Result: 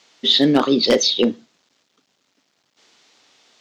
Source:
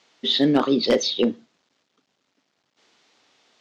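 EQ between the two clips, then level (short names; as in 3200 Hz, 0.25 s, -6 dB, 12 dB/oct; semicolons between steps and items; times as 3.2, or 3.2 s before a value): high shelf 3800 Hz +7 dB; +3.0 dB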